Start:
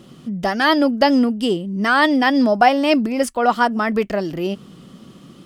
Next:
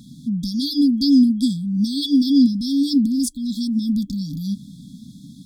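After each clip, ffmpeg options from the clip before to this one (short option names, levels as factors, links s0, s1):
-af "afftfilt=real='re*(1-between(b*sr/4096,300,3300))':imag='im*(1-between(b*sr/4096,300,3300))':win_size=4096:overlap=0.75,volume=1.41"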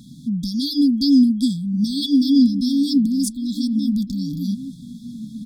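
-filter_complex "[0:a]asplit=2[s0][s1];[s1]adelay=1458,volume=0.251,highshelf=f=4000:g=-32.8[s2];[s0][s2]amix=inputs=2:normalize=0"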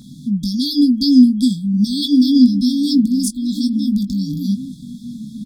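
-filter_complex "[0:a]asplit=2[s0][s1];[s1]adelay=20,volume=0.398[s2];[s0][s2]amix=inputs=2:normalize=0,volume=1.41"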